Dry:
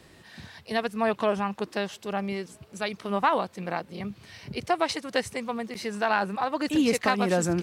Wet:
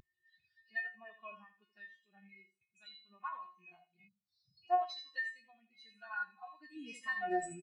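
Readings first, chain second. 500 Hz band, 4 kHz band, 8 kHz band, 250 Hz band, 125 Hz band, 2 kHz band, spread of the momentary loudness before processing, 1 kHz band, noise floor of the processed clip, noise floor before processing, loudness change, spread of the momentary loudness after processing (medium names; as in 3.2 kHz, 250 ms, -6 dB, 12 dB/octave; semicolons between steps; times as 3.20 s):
-18.5 dB, -17.0 dB, under -15 dB, -23.0 dB, under -25 dB, -9.5 dB, 13 LU, -11.5 dB, under -85 dBFS, -55 dBFS, -12.0 dB, 21 LU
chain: rattle on loud lows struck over -40 dBFS, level -28 dBFS; in parallel at +1 dB: upward compressor, threshold -26 dBFS; on the sum: amplifier tone stack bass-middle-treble 5-5-5; feedback comb 360 Hz, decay 0.45 s, harmonics all, mix 90%; on a send: feedback delay 82 ms, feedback 43%, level -6 dB; on the sum: spectral selection erased 4.08–4.63 s, 220–3400 Hz; delay 215 ms -22 dB; spectral contrast expander 2.5:1; trim +10 dB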